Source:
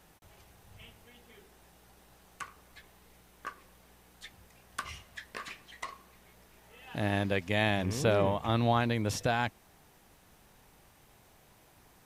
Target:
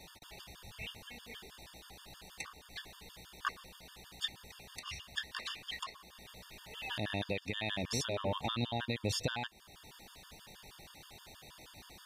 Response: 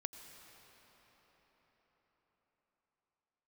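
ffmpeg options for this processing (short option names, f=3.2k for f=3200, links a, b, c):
-af "equalizer=f=3.8k:w=1.1:g=11,acompressor=threshold=-29dB:ratio=10,alimiter=level_in=3.5dB:limit=-24dB:level=0:latency=1:release=480,volume=-3.5dB,afftfilt=real='re*gt(sin(2*PI*6.3*pts/sr)*(1-2*mod(floor(b*sr/1024/910),2)),0)':imag='im*gt(sin(2*PI*6.3*pts/sr)*(1-2*mod(floor(b*sr/1024/910),2)),0)':win_size=1024:overlap=0.75,volume=6.5dB"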